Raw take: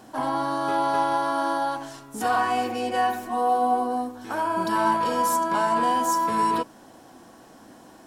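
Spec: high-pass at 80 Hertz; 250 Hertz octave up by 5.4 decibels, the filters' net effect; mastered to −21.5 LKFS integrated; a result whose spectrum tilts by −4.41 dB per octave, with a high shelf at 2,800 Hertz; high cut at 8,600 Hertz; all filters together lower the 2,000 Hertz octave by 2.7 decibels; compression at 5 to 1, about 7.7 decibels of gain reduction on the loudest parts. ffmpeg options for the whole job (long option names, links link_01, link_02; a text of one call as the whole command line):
ffmpeg -i in.wav -af "highpass=80,lowpass=8600,equalizer=frequency=250:width_type=o:gain=6.5,equalizer=frequency=2000:width_type=o:gain=-5,highshelf=frequency=2800:gain=3,acompressor=threshold=-26dB:ratio=5,volume=8dB" out.wav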